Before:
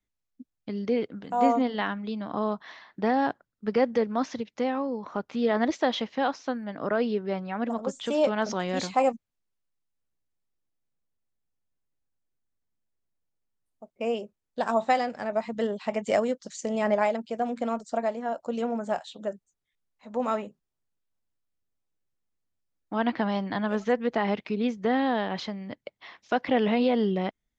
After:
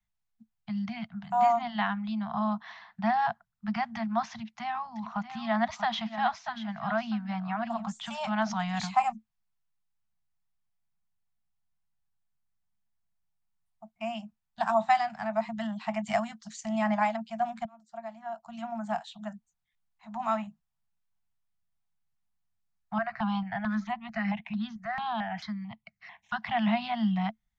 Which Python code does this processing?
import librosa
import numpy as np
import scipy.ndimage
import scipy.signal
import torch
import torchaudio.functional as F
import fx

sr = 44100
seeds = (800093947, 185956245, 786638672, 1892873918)

y = fx.echo_single(x, sr, ms=637, db=-11.0, at=(4.32, 7.92))
y = fx.phaser_held(y, sr, hz=4.5, low_hz=900.0, high_hz=3400.0, at=(22.98, 26.42))
y = fx.edit(y, sr, fx.fade_in_span(start_s=17.65, length_s=1.47), tone=tone)
y = scipy.signal.sosfilt(scipy.signal.cheby1(5, 1.0, [220.0, 670.0], 'bandstop', fs=sr, output='sos'), y)
y = fx.high_shelf(y, sr, hz=3600.0, db=-7.5)
y = y * 10.0 ** (2.0 / 20.0)